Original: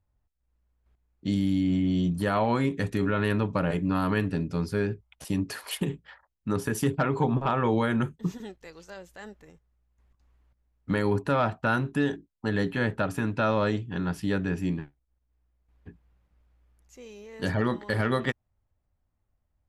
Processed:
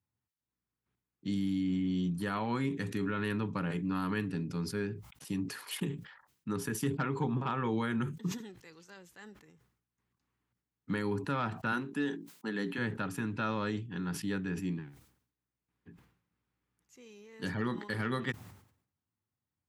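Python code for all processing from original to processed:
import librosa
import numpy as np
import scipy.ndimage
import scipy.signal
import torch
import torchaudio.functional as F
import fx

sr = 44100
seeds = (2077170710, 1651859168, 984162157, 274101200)

y = fx.chain(x, sr, fx.highpass(hz=180.0, slope=24),
    fx.sustainer(db_per_s=140.0), at=(11.72, 12.78))
y = scipy.signal.sosfilt(scipy.signal.butter(4, 110.0, 'highpass', fs=sr, output='sos'), y)
y = fx.peak_eq(y, sr, hz=620.0, db=-11.0, octaves=0.61)
y = fx.sustainer(y, sr, db_per_s=96.0)
y = F.gain(torch.from_numpy(y), -6.0).numpy()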